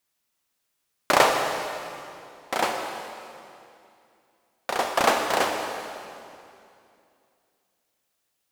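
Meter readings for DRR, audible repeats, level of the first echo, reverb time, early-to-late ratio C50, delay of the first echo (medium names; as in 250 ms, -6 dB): 3.0 dB, no echo, no echo, 2.6 s, 3.5 dB, no echo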